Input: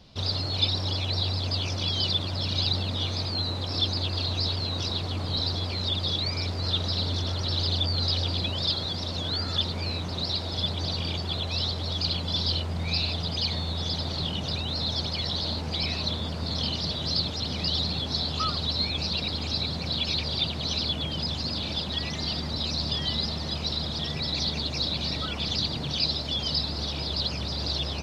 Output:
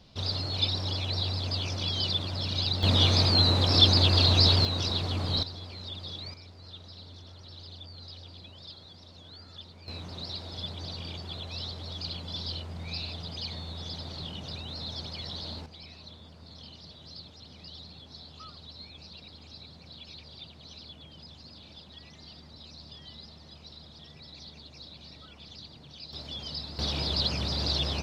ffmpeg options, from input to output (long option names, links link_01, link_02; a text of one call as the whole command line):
ffmpeg -i in.wav -af "asetnsamples=nb_out_samples=441:pad=0,asendcmd='2.83 volume volume 7dB;4.65 volume volume 0dB;5.43 volume volume -12dB;6.34 volume volume -19.5dB;9.88 volume volume -9dB;15.66 volume volume -19dB;26.13 volume volume -10dB;26.79 volume volume 0.5dB',volume=-3dB" out.wav